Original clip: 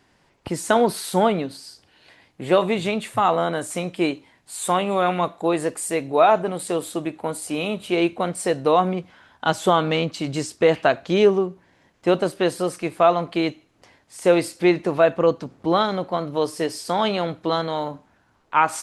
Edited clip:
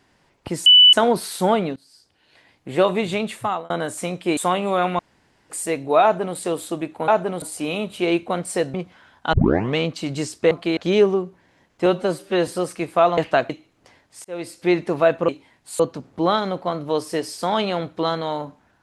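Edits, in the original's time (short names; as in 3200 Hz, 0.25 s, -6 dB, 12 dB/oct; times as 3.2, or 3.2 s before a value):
0.66 add tone 2980 Hz -6.5 dBFS 0.27 s
1.49–2.42 fade in, from -20 dB
3.09–3.43 fade out
4.1–4.61 move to 15.26
5.23–5.74 room tone
6.27–6.61 copy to 7.32
8.64–8.92 cut
9.51 tape start 0.43 s
10.69–11.01 swap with 13.21–13.47
12.1–12.51 stretch 1.5×
14.22–14.75 fade in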